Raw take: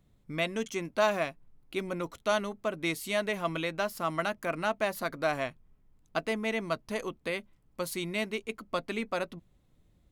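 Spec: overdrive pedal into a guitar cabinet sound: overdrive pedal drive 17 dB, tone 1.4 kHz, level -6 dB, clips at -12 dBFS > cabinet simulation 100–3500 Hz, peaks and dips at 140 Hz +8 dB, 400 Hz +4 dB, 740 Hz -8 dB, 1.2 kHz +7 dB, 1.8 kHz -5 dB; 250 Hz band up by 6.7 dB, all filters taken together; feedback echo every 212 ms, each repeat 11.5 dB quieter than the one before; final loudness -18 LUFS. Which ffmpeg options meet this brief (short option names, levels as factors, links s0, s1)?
-filter_complex "[0:a]equalizer=f=250:t=o:g=8,aecho=1:1:212|424|636:0.266|0.0718|0.0194,asplit=2[s0][s1];[s1]highpass=f=720:p=1,volume=7.08,asoftclip=type=tanh:threshold=0.251[s2];[s0][s2]amix=inputs=2:normalize=0,lowpass=f=1400:p=1,volume=0.501,highpass=100,equalizer=f=140:t=q:w=4:g=8,equalizer=f=400:t=q:w=4:g=4,equalizer=f=740:t=q:w=4:g=-8,equalizer=f=1200:t=q:w=4:g=7,equalizer=f=1800:t=q:w=4:g=-5,lowpass=f=3500:w=0.5412,lowpass=f=3500:w=1.3066,volume=2.82"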